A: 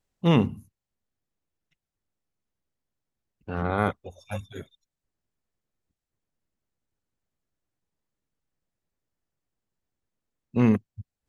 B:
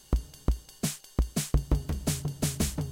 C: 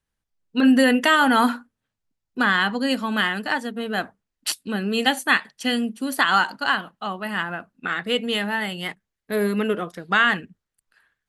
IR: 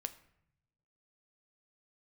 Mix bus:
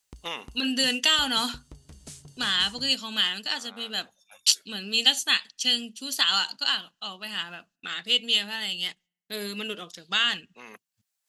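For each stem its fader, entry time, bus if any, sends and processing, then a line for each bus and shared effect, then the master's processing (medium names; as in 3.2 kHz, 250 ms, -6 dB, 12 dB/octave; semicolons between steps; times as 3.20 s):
+1.0 dB, 0.00 s, no send, high-pass 820 Hz 12 dB/octave; compression 2.5:1, threshold -33 dBFS, peak gain reduction 7 dB; auto duck -17 dB, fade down 1.50 s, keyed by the third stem
-9.5 dB, 0.00 s, no send, low-pass 10 kHz 24 dB/octave; compression 2.5:1, threshold -39 dBFS, peak gain reduction 14 dB; gate -49 dBFS, range -25 dB
-14.5 dB, 0.00 s, send -23 dB, gate -49 dBFS, range -30 dB; high-order bell 4.4 kHz +13 dB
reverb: on, RT60 0.75 s, pre-delay 7 ms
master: treble shelf 2.8 kHz +12 dB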